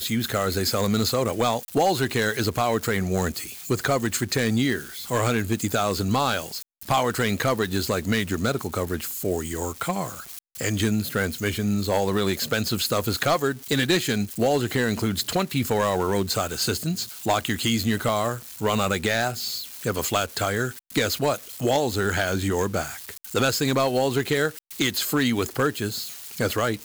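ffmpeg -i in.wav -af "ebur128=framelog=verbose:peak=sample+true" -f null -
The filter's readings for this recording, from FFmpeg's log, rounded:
Integrated loudness:
  I:         -24.5 LUFS
  Threshold: -34.6 LUFS
Loudness range:
  LRA:         2.4 LU
  Threshold: -44.6 LUFS
  LRA low:   -25.9 LUFS
  LRA high:  -23.5 LUFS
Sample peak:
  Peak:      -13.0 dBFS
True peak:
  Peak:      -12.2 dBFS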